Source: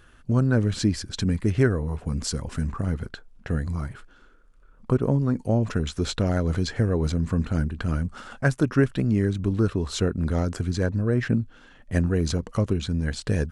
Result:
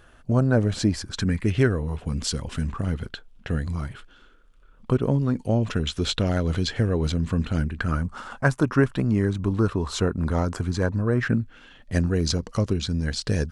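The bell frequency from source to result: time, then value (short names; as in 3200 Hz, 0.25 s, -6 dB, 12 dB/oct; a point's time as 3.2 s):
bell +8.5 dB 0.8 oct
0.88 s 670 Hz
1.56 s 3200 Hz
7.57 s 3200 Hz
8.02 s 1000 Hz
11.1 s 1000 Hz
11.98 s 5000 Hz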